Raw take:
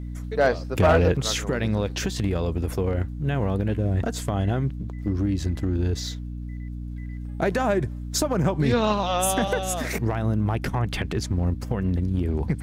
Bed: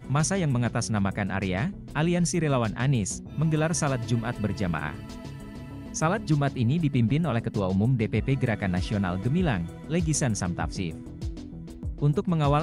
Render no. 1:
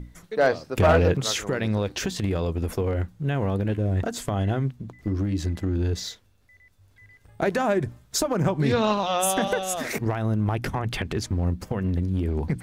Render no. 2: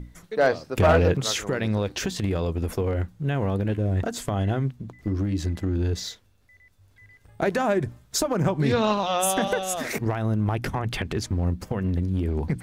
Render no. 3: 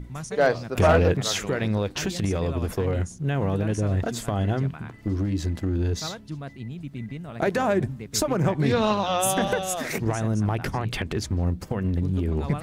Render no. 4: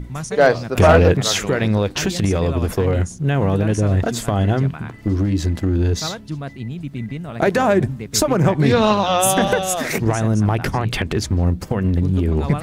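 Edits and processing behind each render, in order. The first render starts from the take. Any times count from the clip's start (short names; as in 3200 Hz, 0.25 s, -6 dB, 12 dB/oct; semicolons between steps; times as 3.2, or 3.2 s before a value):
notches 60/120/180/240/300 Hz
nothing audible
add bed -11.5 dB
gain +7 dB; limiter -3 dBFS, peak gain reduction 1 dB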